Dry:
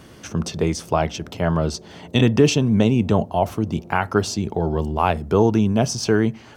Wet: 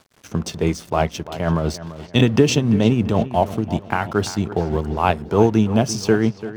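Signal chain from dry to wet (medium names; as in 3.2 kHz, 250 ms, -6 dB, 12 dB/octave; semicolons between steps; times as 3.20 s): tremolo 5.9 Hz, depth 44%; crossover distortion -42.5 dBFS; on a send: feedback echo behind a low-pass 340 ms, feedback 38%, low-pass 3.9 kHz, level -14 dB; on the sum: trim +3 dB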